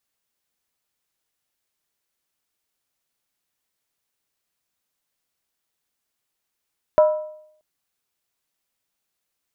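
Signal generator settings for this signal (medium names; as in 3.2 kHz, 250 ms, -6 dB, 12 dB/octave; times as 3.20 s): skin hit, lowest mode 615 Hz, decay 0.70 s, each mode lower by 10 dB, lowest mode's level -8.5 dB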